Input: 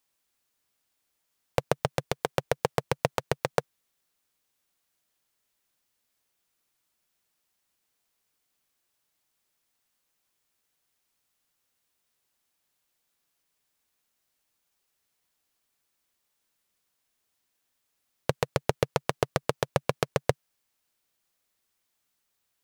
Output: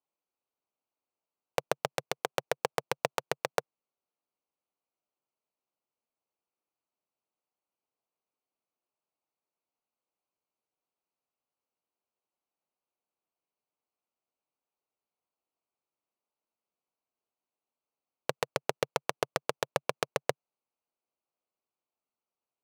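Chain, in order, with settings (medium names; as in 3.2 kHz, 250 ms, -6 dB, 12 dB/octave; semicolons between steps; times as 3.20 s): local Wiener filter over 25 samples; high-pass 560 Hz 6 dB/octave; trim -1 dB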